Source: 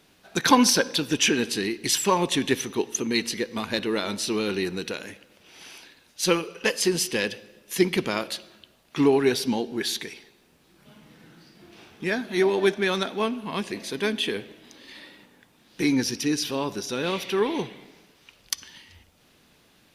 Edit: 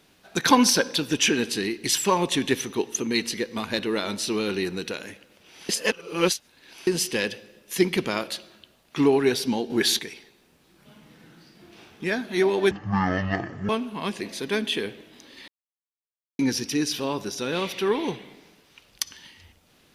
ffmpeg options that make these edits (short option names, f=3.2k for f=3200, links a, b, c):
-filter_complex "[0:a]asplit=9[a][b][c][d][e][f][g][h][i];[a]atrim=end=5.692[j];[b]atrim=start=5.688:end=6.872,asetpts=PTS-STARTPTS,areverse[k];[c]atrim=start=6.868:end=9.702[l];[d]atrim=start=9.698:end=9.992,asetpts=PTS-STARTPTS,volume=6dB[m];[e]atrim=start=9.988:end=12.714[n];[f]atrim=start=12.71:end=13.2,asetpts=PTS-STARTPTS,asetrate=22050,aresample=44100[o];[g]atrim=start=13.196:end=14.99,asetpts=PTS-STARTPTS,afade=t=out:st=1.79:d=0.004:c=hsin[p];[h]atrim=start=14.99:end=15.9,asetpts=PTS-STARTPTS,volume=0[q];[i]atrim=start=15.9,asetpts=PTS-STARTPTS,afade=t=in:d=0.004:c=hsin[r];[j][k]acrossfade=d=0.004:c1=hsin:c2=hsin[s];[s][l]acrossfade=d=0.004:c1=hsin:c2=hsin[t];[t][m]acrossfade=d=0.004:c1=hsin:c2=hsin[u];[u][n]acrossfade=d=0.004:c1=hsin:c2=hsin[v];[v][o]acrossfade=d=0.004:c1=hsin:c2=hsin[w];[p][q][r]concat=n=3:v=0:a=1[x];[w][x]acrossfade=d=0.004:c1=hsin:c2=hsin"